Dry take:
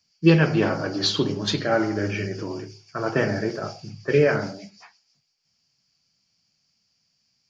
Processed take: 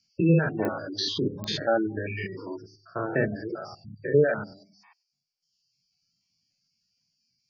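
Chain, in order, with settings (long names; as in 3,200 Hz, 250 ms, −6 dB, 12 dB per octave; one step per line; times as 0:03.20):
spectrum averaged block by block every 100 ms
mains-hum notches 50/100/150/200/250/300/350/400 Hz
reverb reduction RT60 1.3 s
0:02.17–0:02.61: dynamic equaliser 2,700 Hz, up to +7 dB, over −55 dBFS, Q 0.83
gate on every frequency bin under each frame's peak −20 dB strong
0:03.84–0:04.56: Butterworth low-pass 5,000 Hz
digital clicks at 0:00.65/0:01.44, −18 dBFS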